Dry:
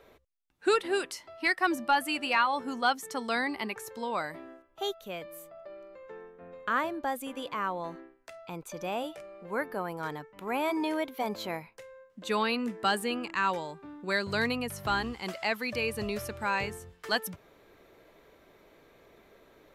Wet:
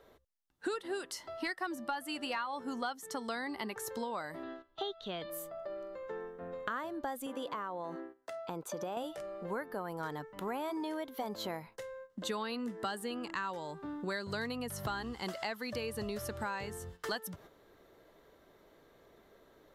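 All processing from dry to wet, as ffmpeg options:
-filter_complex "[0:a]asettb=1/sr,asplit=3[s0][s1][s2];[s0]atrim=end=4.434[s3];[s1]atrim=start=4.43:end=5.3,asetpts=PTS-STARTPTS,afade=t=in:d=0.004:c=qsin,afade=t=out:st=0.866:d=0.004:c=qsin,acrossover=split=2500[s4][s5];[s5]acompressor=threshold=0.00316:ratio=4:attack=1:release=60[s6];[s4][s6]amix=inputs=2:normalize=0,lowpass=f=3900:t=q:w=3.9,equalizer=f=540:w=6.9:g=-7[s7];[s2]atrim=start=5.296[s8];[s3][s7]acrossfade=d=0.004:c1=hsin:c2=qsin[s9];[s9][s8]acrossfade=d=0.004:c1=qsin:c2=hsin,asettb=1/sr,asplit=3[s10][s11][s12];[s10]atrim=end=7.264[s13];[s11]atrim=start=7.26:end=8.97,asetpts=PTS-STARTPTS,afade=t=in:d=0.004:c=qsin,afade=t=out:st=1.706:d=0.004:c=qsin,highpass=f=340:p=1,tiltshelf=f=1300:g=4,acompressor=threshold=0.0141:ratio=2.5:attack=3.2:release=140:knee=1:detection=peak[s14];[s12]atrim=start=8.966[s15];[s13][s14]acrossfade=d=0.004:c1=hsin:c2=qsin[s16];[s16][s15]acrossfade=d=0.004:c1=qsin:c2=hsin,agate=range=0.398:threshold=0.002:ratio=16:detection=peak,equalizer=f=2400:w=5.2:g=-10.5,acompressor=threshold=0.01:ratio=6,volume=1.68"

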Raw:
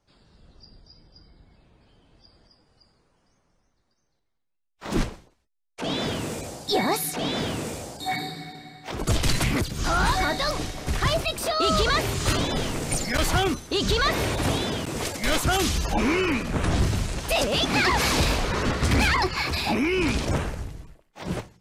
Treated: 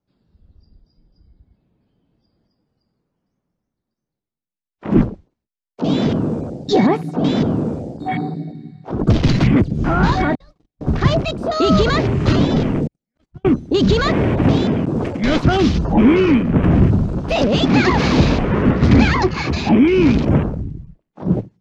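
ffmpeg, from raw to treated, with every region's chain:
-filter_complex "[0:a]asettb=1/sr,asplit=3[s0][s1][s2];[s0]atrim=end=10.354[s3];[s1]atrim=start=10.35:end=10.81,asetpts=PTS-STARTPTS,afade=t=in:d=0.004:c=qsin,afade=t=out:st=0.456:d=0.004:c=qsin,agate=range=0.00501:threshold=0.0562:ratio=16:release=100:detection=peak,acompressor=threshold=0.0141:ratio=10:attack=3.2:release=140:knee=1:detection=peak[s4];[s2]atrim=start=10.806[s5];[s3][s4]acrossfade=d=0.004:c1=hsin:c2=qsin[s6];[s6][s5]acrossfade=d=0.004:c1=qsin:c2=hsin,asettb=1/sr,asplit=3[s7][s8][s9];[s7]atrim=end=12.874[s10];[s8]atrim=start=12.87:end=13.45,asetpts=PTS-STARTPTS,afade=t=in:d=0.004:c=qsin,afade=t=out:st=0.576:d=0.004:c=qsin,agate=range=0.00282:threshold=0.126:ratio=16:release=100:detection=peak,acompressor=threshold=0.01:ratio=4:attack=3.2:release=140:knee=1:detection=peak[s11];[s9]atrim=start=13.446[s12];[s10][s11]acrossfade=d=0.004:c1=hsin:c2=qsin[s13];[s13][s12]acrossfade=d=0.004:c1=qsin:c2=hsin,lowpass=6000,afwtdn=0.02,equalizer=f=200:t=o:w=2.6:g=13.5,volume=1.19"

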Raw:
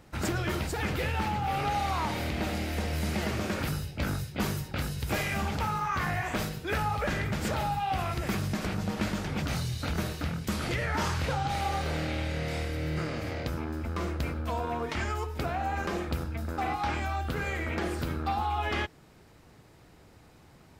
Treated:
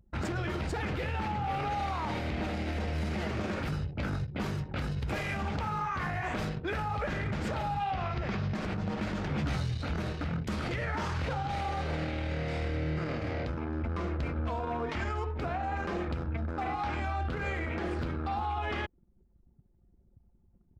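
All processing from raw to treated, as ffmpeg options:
-filter_complex "[0:a]asettb=1/sr,asplit=3[s0][s1][s2];[s0]atrim=end=7.914[s3];[s1]atrim=start=7.91:end=8.55,asetpts=PTS-STARTPTS,afade=t=in:d=0.004:c=qsin,afade=t=out:st=0.636:d=0.004:c=qsin,lowpass=f=5800:w=0.5412,lowpass=f=5800:w=1.3066,bandreject=f=310:w=5.1[s4];[s2]atrim=start=8.546[s5];[s3][s4]acrossfade=d=0.004:c1=hsin:c2=qsin[s6];[s6][s5]acrossfade=d=0.004:c1=qsin:c2=hsin,asettb=1/sr,asplit=3[s7][s8][s9];[s7]atrim=end=9.294[s10];[s8]atrim=start=9.29:end=9.72,asetpts=PTS-STARTPTS,afade=t=in:d=0.004:c=qsin,afade=t=out:st=0.426:d=0.004:c=qsin,volume=26.6,asoftclip=hard,volume=0.0376,asplit=2[s11][s12];[s12]adelay=14,volume=0.562[s13];[s11][s13]amix=inputs=2:normalize=0,atrim=end_sample=18963[s14];[s9]atrim=start=9.716[s15];[s10][s14]acrossfade=d=0.004:c1=hsin:c2=qsin[s16];[s16][s15]acrossfade=d=0.004:c1=qsin:c2=hsin,aemphasis=mode=reproduction:type=50fm,anlmdn=0.0631,alimiter=level_in=1.41:limit=0.0631:level=0:latency=1:release=50,volume=0.708,volume=1.26"

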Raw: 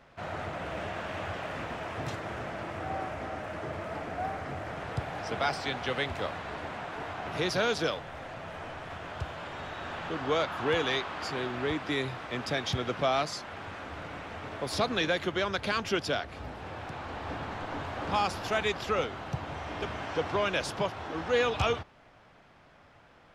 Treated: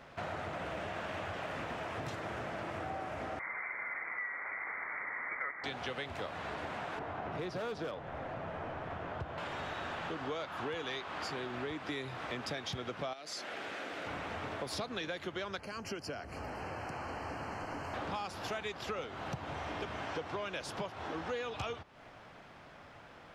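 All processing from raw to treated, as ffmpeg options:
-filter_complex "[0:a]asettb=1/sr,asplit=3[s0][s1][s2];[s0]atrim=end=3.394[s3];[s1]atrim=start=3.39:end=5.64,asetpts=PTS-STARTPTS,afade=t=in:d=0.004:c=qsin,afade=t=out:st=2.246:d=0.004:c=qsin,highpass=f=460:w=0.5412,highpass=f=460:w=1.3066,lowpass=f=2300:t=q:w=0.5098,lowpass=f=2300:t=q:w=0.6013,lowpass=f=2300:t=q:w=0.9,lowpass=f=2300:t=q:w=2.563,afreqshift=-2700[s4];[s2]atrim=start=5.636[s5];[s3][s4]acrossfade=d=0.004:c1=hsin:c2=qsin[s6];[s6][s5]acrossfade=d=0.004:c1=qsin:c2=hsin,asettb=1/sr,asplit=3[s7][s8][s9];[s7]atrim=end=6.994[s10];[s8]atrim=start=6.99:end=9.38,asetpts=PTS-STARTPTS,afade=t=in:d=0.004:c=qsin,afade=t=out:st=2.386:d=0.004:c=qsin,lowpass=f=1100:p=1,asoftclip=type=hard:threshold=0.0422[s11];[s9]atrim=start=9.376[s12];[s10][s11]acrossfade=d=0.004:c1=hsin:c2=qsin[s13];[s13][s12]acrossfade=d=0.004:c1=qsin:c2=hsin,asettb=1/sr,asplit=3[s14][s15][s16];[s14]atrim=end=13.134[s17];[s15]atrim=start=13.13:end=14.07,asetpts=PTS-STARTPTS,afade=t=in:d=0.004:c=qsin,afade=t=out:st=0.936:d=0.004:c=qsin,highpass=300,acompressor=threshold=0.0178:ratio=4:attack=3.2:release=140:knee=1:detection=peak,equalizer=f=1000:w=1.8:g=-8.5[s18];[s16]atrim=start=14.066[s19];[s17][s18]acrossfade=d=0.004:c1=hsin:c2=qsin[s20];[s20][s19]acrossfade=d=0.004:c1=qsin:c2=hsin,asettb=1/sr,asplit=3[s21][s22][s23];[s21]atrim=end=15.594[s24];[s22]atrim=start=15.59:end=17.94,asetpts=PTS-STARTPTS,afade=t=in:d=0.004:c=qsin,afade=t=out:st=2.346:d=0.004:c=qsin,asuperstop=centerf=3600:order=8:qfactor=3.5,acrossover=split=320|1300|5200[s25][s26][s27][s28];[s25]acompressor=threshold=0.00447:ratio=3[s29];[s26]acompressor=threshold=0.00562:ratio=3[s30];[s27]acompressor=threshold=0.00251:ratio=3[s31];[s28]acompressor=threshold=0.00178:ratio=3[s32];[s29][s30][s31][s32]amix=inputs=4:normalize=0[s33];[s23]atrim=start=17.936[s34];[s24][s33]acrossfade=d=0.004:c1=hsin:c2=qsin[s35];[s35][s34]acrossfade=d=0.004:c1=qsin:c2=hsin,lowshelf=f=73:g=-6,acompressor=threshold=0.00891:ratio=6,volume=1.58"

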